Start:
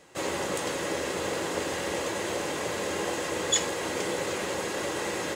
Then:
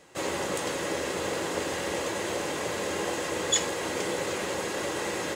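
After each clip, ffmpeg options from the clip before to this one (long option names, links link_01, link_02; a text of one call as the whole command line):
ffmpeg -i in.wav -af anull out.wav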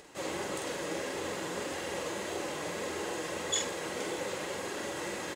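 ffmpeg -i in.wav -filter_complex "[0:a]acompressor=mode=upward:threshold=-40dB:ratio=2.5,flanger=delay=2.2:depth=4.6:regen=54:speed=1.7:shape=triangular,asplit=2[link_01][link_02];[link_02]adelay=46,volume=-4.5dB[link_03];[link_01][link_03]amix=inputs=2:normalize=0,volume=-3dB" out.wav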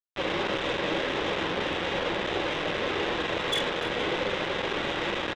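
ffmpeg -i in.wav -af "aresample=8000,acrusher=bits=5:mix=0:aa=0.000001,aresample=44100,asoftclip=type=tanh:threshold=-30.5dB,aecho=1:1:294:0.178,volume=9dB" out.wav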